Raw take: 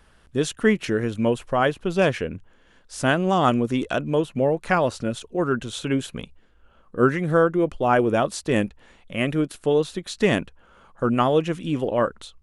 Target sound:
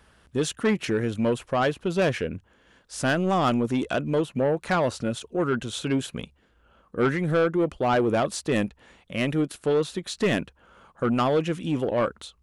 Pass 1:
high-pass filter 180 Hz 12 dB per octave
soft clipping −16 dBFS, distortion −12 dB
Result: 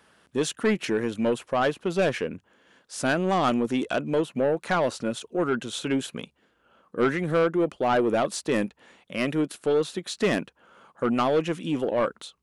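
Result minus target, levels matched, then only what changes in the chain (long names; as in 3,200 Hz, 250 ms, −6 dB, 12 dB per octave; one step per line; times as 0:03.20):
125 Hz band −4.5 dB
change: high-pass filter 46 Hz 12 dB per octave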